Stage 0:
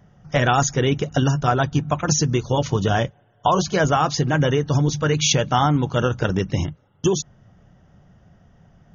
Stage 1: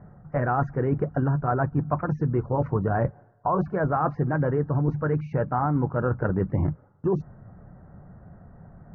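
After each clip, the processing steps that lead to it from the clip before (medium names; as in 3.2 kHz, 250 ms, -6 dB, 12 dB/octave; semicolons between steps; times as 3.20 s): reverse; compression 6:1, threshold -26 dBFS, peak gain reduction 13 dB; reverse; inverse Chebyshev low-pass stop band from 3.1 kHz, stop band 40 dB; trim +5 dB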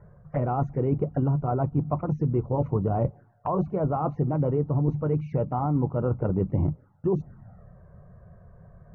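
touch-sensitive flanger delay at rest 2.2 ms, full sweep at -23 dBFS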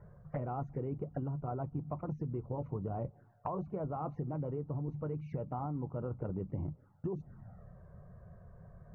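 compression 10:1, threshold -30 dBFS, peak gain reduction 11.5 dB; trim -4 dB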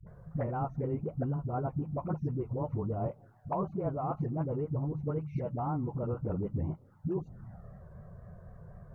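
phase dispersion highs, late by 69 ms, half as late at 330 Hz; vibrato 3.9 Hz 80 cents; trim +4.5 dB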